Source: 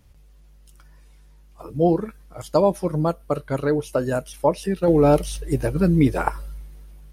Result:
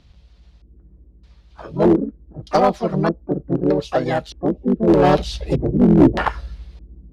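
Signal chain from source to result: harmony voices +4 st -1 dB, +5 st -13 dB, +12 st -17 dB; LFO low-pass square 0.81 Hz 320–4200 Hz; one-sided clip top -9 dBFS

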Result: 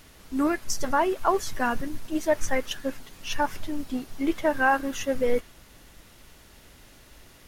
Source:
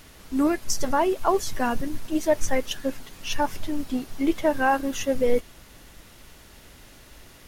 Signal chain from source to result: dynamic bell 1.5 kHz, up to +6 dB, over -39 dBFS, Q 1.1; trim -3 dB

